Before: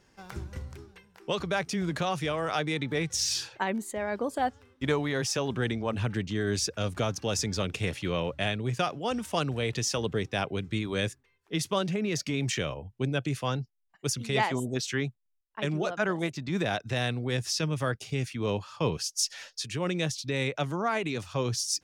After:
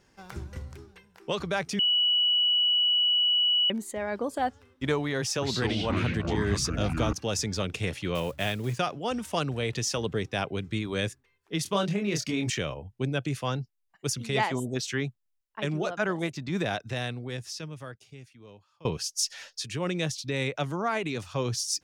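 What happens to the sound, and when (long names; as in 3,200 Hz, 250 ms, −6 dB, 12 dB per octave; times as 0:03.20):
0:01.79–0:03.70: beep over 2,940 Hz −20.5 dBFS
0:05.21–0:07.13: delay with pitch and tempo change per echo 209 ms, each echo −5 semitones, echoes 3
0:08.15–0:08.79: one scale factor per block 5 bits
0:11.63–0:12.50: double-tracking delay 25 ms −4.5 dB
0:16.63–0:18.85: fade out quadratic, to −23.5 dB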